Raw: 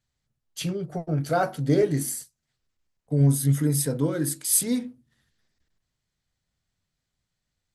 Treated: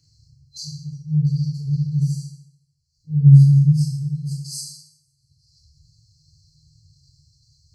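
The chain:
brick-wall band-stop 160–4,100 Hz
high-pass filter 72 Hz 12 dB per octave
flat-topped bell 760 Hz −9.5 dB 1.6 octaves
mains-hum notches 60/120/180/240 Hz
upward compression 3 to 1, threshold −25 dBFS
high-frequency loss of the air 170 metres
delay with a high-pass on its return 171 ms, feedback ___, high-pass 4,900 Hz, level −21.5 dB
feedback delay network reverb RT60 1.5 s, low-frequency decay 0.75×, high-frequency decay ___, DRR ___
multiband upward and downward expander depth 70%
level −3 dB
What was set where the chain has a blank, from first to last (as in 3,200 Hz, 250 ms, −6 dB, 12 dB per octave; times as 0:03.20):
68%, 0.55×, −8 dB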